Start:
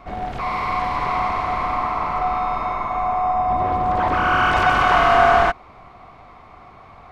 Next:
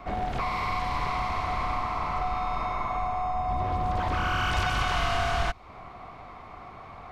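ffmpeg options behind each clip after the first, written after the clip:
ffmpeg -i in.wav -filter_complex "[0:a]acrossover=split=140|3000[link_01][link_02][link_03];[link_02]acompressor=threshold=-28dB:ratio=6[link_04];[link_01][link_04][link_03]amix=inputs=3:normalize=0" out.wav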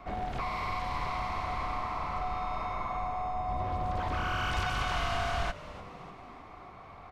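ffmpeg -i in.wav -filter_complex "[0:a]asplit=6[link_01][link_02][link_03][link_04][link_05][link_06];[link_02]adelay=297,afreqshift=-100,volume=-16dB[link_07];[link_03]adelay=594,afreqshift=-200,volume=-20.9dB[link_08];[link_04]adelay=891,afreqshift=-300,volume=-25.8dB[link_09];[link_05]adelay=1188,afreqshift=-400,volume=-30.6dB[link_10];[link_06]adelay=1485,afreqshift=-500,volume=-35.5dB[link_11];[link_01][link_07][link_08][link_09][link_10][link_11]amix=inputs=6:normalize=0,volume=-5dB" out.wav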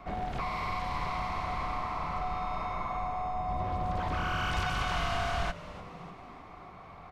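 ffmpeg -i in.wav -af "equalizer=frequency=170:width=6.8:gain=7.5" out.wav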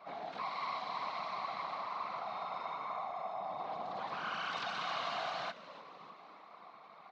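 ffmpeg -i in.wav -af "afftfilt=real='hypot(re,im)*cos(2*PI*random(0))':imag='hypot(re,im)*sin(2*PI*random(1))':win_size=512:overlap=0.75,highpass=frequency=220:width=0.5412,highpass=frequency=220:width=1.3066,equalizer=frequency=250:width_type=q:width=4:gain=-8,equalizer=frequency=360:width_type=q:width=4:gain=-6,equalizer=frequency=1100:width_type=q:width=4:gain=4,equalizer=frequency=4000:width_type=q:width=4:gain=9,lowpass=frequency=6000:width=0.5412,lowpass=frequency=6000:width=1.3066,volume=-1dB" out.wav

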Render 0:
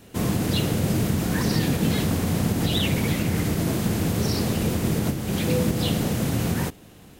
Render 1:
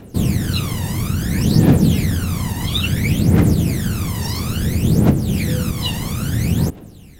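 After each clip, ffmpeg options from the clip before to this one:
ffmpeg -i in.wav -af "aphaser=in_gain=1:out_gain=1:delay=1.1:decay=0.79:speed=0.59:type=triangular,volume=-1dB" out.wav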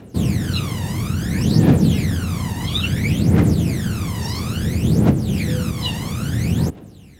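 ffmpeg -i in.wav -af "highpass=60,highshelf=frequency=11000:gain=-10.5,volume=-1dB" out.wav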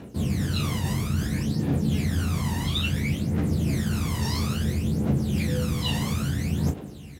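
ffmpeg -i in.wav -af "areverse,acompressor=threshold=-24dB:ratio=6,areverse,aecho=1:1:14|36:0.562|0.398" out.wav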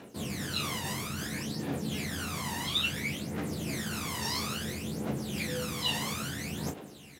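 ffmpeg -i in.wav -af "highpass=frequency=610:poles=1" out.wav

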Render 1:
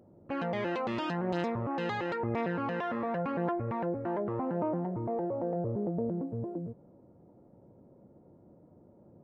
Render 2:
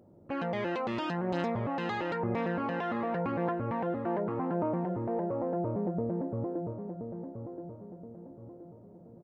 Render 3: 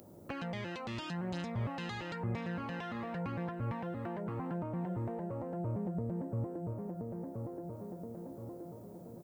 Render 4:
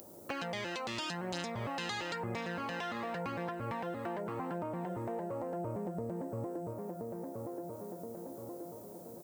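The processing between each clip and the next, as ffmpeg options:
ffmpeg -i in.wav -filter_complex "[0:a]asplit=2[link_01][link_02];[link_02]adelay=1025,lowpass=frequency=1700:poles=1,volume=-7.5dB,asplit=2[link_03][link_04];[link_04]adelay=1025,lowpass=frequency=1700:poles=1,volume=0.43,asplit=2[link_05][link_06];[link_06]adelay=1025,lowpass=frequency=1700:poles=1,volume=0.43,asplit=2[link_07][link_08];[link_08]adelay=1025,lowpass=frequency=1700:poles=1,volume=0.43,asplit=2[link_09][link_10];[link_10]adelay=1025,lowpass=frequency=1700:poles=1,volume=0.43[link_11];[link_01][link_03][link_05][link_07][link_09][link_11]amix=inputs=6:normalize=0" out.wav
ffmpeg -i in.wav -filter_complex "[0:a]crystalizer=i=7.5:c=0,acrossover=split=160[link_01][link_02];[link_02]acompressor=threshold=-44dB:ratio=5[link_03];[link_01][link_03]amix=inputs=2:normalize=0,volume=2.5dB" out.wav
ffmpeg -i in.wav -af "bass=frequency=250:gain=-11,treble=frequency=4000:gain=8,volume=4dB" out.wav

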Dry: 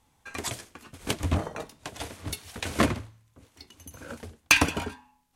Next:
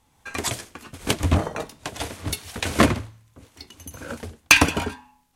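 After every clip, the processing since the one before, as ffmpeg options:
ffmpeg -i in.wav -af "dynaudnorm=framelen=100:gausssize=3:maxgain=4dB,volume=2.5dB" out.wav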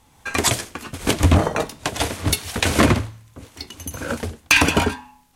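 ffmpeg -i in.wav -af "alimiter=limit=-12dB:level=0:latency=1:release=76,volume=8dB" out.wav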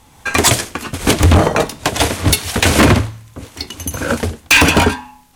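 ffmpeg -i in.wav -af "asoftclip=type=hard:threshold=-13.5dB,volume=8.5dB" out.wav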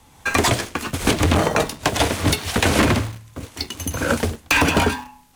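ffmpeg -i in.wav -filter_complex "[0:a]acrossover=split=120|1600|5300[link_01][link_02][link_03][link_04];[link_01]acompressor=threshold=-23dB:ratio=4[link_05];[link_02]acompressor=threshold=-14dB:ratio=4[link_06];[link_03]acompressor=threshold=-21dB:ratio=4[link_07];[link_04]acompressor=threshold=-28dB:ratio=4[link_08];[link_05][link_06][link_07][link_08]amix=inputs=4:normalize=0,asplit=2[link_09][link_10];[link_10]acrusher=bits=4:mix=0:aa=0.000001,volume=-9.5dB[link_11];[link_09][link_11]amix=inputs=2:normalize=0,volume=-4dB" out.wav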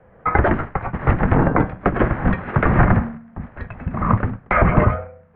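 ffmpeg -i in.wav -af "asubboost=boost=2.5:cutoff=230,highpass=frequency=150:width_type=q:width=0.5412,highpass=frequency=150:width_type=q:width=1.307,lowpass=frequency=2100:width_type=q:width=0.5176,lowpass=frequency=2100:width_type=q:width=0.7071,lowpass=frequency=2100:width_type=q:width=1.932,afreqshift=-340,volume=4dB" out.wav

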